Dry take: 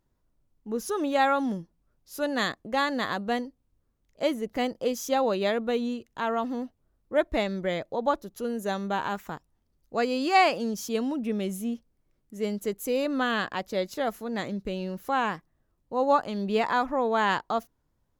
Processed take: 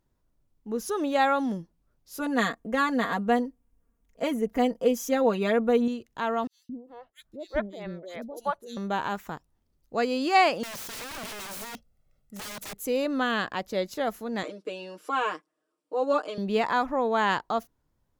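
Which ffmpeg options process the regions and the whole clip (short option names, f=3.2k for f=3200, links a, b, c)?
-filter_complex "[0:a]asettb=1/sr,asplit=3[a][b][c];[a]atrim=end=2.194[d];[b]atrim=start=2.19:end=5.88,asetpts=PTS-STARTPTS,afade=t=in:d=0.004:c=qsin,afade=t=out:st=3.686:d=0.004:c=qsin,equalizer=f=4.2k:t=o:w=0.77:g=-9,aecho=1:1:4.3:0.82,atrim=end_sample=162729[e];[c]atrim=start=5.876[f];[d][e]acrossfade=d=0.004:c1=hsin:c2=qsin[g];[g][f]acrossfade=d=0.004:c1=qsin:c2=hsin,asettb=1/sr,asplit=3[h][i][j];[h]atrim=end=6.474[k];[i]atrim=start=6.47:end=8.77,asetpts=PTS-STARTPTS,afade=t=in:d=0.004:c=qsin,afade=t=out:st=2.296:d=0.004:c=qsin,acrossover=split=440[l][m];[l]aeval=exprs='val(0)*(1-1/2+1/2*cos(2*PI*3.3*n/s))':c=same[n];[m]aeval=exprs='val(0)*(1-1/2-1/2*cos(2*PI*3.3*n/s))':c=same[o];[n][o]amix=inputs=2:normalize=0,acrossover=split=440|3400[p][q][r];[p]adelay=220[s];[q]adelay=390[t];[s][t][r]amix=inputs=3:normalize=0,atrim=end_sample=101430[u];[j]atrim=start=8.766[v];[k][u]acrossfade=d=0.004:c1=hsin:c2=qsin[w];[w][v]acrossfade=d=0.004:c1=qsin:c2=hsin,asettb=1/sr,asplit=3[x][y][z];[x]atrim=end=10.634[aa];[y]atrim=start=10.63:end=12.78,asetpts=PTS-STARTPTS,afade=t=in:d=0.004:c=qsin,afade=t=out:st=2.146:d=0.004:c=qsin,aecho=1:1:1.5:0.7,atrim=end_sample=94815,aeval=exprs='(mod(47.3*val(0)+1,2)-1)/47.3':c=same[ab];[z]atrim=start=12.776[ac];[aa][ab]acrossfade=d=0.004:c1=hsin:c2=qsin[ad];[ad][ac]acrossfade=d=0.004:c1=qsin:c2=hsin,asettb=1/sr,asplit=3[ae][af][ag];[ae]atrim=end=14.434[ah];[af]atrim=start=14.43:end=16.38,asetpts=PTS-STARTPTS,afade=t=in:d=0.004:c=qsin,afade=t=out:st=1.946:d=0.004:c=qsin,highpass=f=320:w=0.5412,highpass=f=320:w=1.3066,equalizer=f=820:t=q:w=4:g=-9,equalizer=f=1.9k:t=q:w=4:g=-8,equalizer=f=4k:t=q:w=4:g=-5,lowpass=f=9.7k:w=0.5412,lowpass=f=9.7k:w=1.3066,bandreject=f=6.4k:w=7.4,aecho=1:1:6.5:0.99,atrim=end_sample=85995[ai];[ag]atrim=start=16.376[aj];[ah][ai]acrossfade=d=0.004:c1=hsin:c2=qsin[ak];[ak][aj]acrossfade=d=0.004:c1=qsin:c2=hsin"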